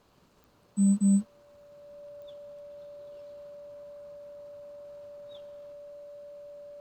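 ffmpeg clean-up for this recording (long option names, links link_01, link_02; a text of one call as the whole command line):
ffmpeg -i in.wav -af "adeclick=threshold=4,bandreject=frequency=580:width=30" out.wav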